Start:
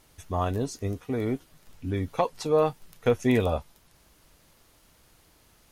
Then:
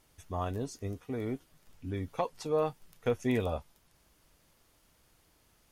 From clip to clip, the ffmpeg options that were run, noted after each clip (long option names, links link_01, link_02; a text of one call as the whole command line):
ffmpeg -i in.wav -af "bandreject=frequency=4000:width=30,volume=-7dB" out.wav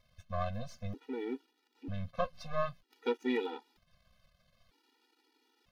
ffmpeg -i in.wav -af "aeval=exprs='if(lt(val(0),0),0.251*val(0),val(0))':channel_layout=same,highshelf=frequency=5900:width_type=q:width=1.5:gain=-11,afftfilt=real='re*gt(sin(2*PI*0.53*pts/sr)*(1-2*mod(floor(b*sr/1024/250),2)),0)':imag='im*gt(sin(2*PI*0.53*pts/sr)*(1-2*mod(floor(b*sr/1024/250),2)),0)':win_size=1024:overlap=0.75,volume=3dB" out.wav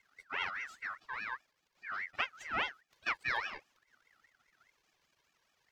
ffmpeg -i in.wav -af "aeval=exprs='val(0)*sin(2*PI*1700*n/s+1700*0.25/4.9*sin(2*PI*4.9*n/s))':channel_layout=same" out.wav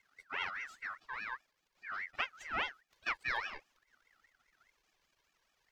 ffmpeg -i in.wav -af "asubboost=boost=3.5:cutoff=55,volume=-1.5dB" out.wav